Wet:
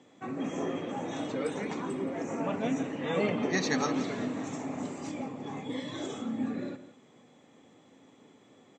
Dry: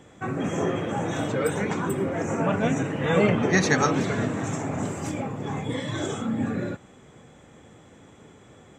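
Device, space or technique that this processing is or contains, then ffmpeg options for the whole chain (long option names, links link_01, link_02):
car door speaker: -filter_complex "[0:a]highpass=frequency=270:poles=1,highpass=100,equalizer=frequency=260:width_type=q:width=4:gain=8,equalizer=frequency=1500:width_type=q:width=4:gain=-7,equalizer=frequency=4300:width_type=q:width=4:gain=5,lowpass=frequency=7100:width=0.5412,lowpass=frequency=7100:width=1.3066,asplit=2[link_01][link_02];[link_02]adelay=169.1,volume=-13dB,highshelf=frequency=4000:gain=-3.8[link_03];[link_01][link_03]amix=inputs=2:normalize=0,volume=-7dB"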